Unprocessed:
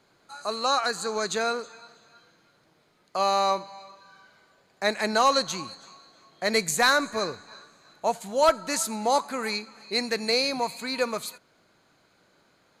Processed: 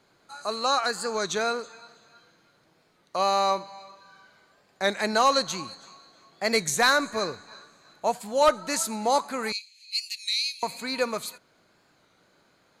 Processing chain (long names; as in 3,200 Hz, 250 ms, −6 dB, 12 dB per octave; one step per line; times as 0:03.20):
0:09.52–0:10.63: Butterworth high-pass 2,500 Hz 48 dB per octave
wow of a warped record 33 1/3 rpm, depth 100 cents